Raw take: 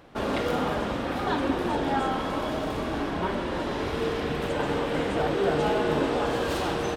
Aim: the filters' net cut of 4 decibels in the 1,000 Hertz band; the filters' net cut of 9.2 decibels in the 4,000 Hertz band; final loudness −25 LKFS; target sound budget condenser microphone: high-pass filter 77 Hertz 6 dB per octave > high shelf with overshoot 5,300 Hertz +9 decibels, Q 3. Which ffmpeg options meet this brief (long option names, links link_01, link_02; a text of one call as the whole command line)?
ffmpeg -i in.wav -af "highpass=frequency=77:poles=1,equalizer=frequency=1000:width_type=o:gain=-4.5,equalizer=frequency=4000:width_type=o:gain=-8,highshelf=frequency=5300:width_type=q:width=3:gain=9,volume=4dB" out.wav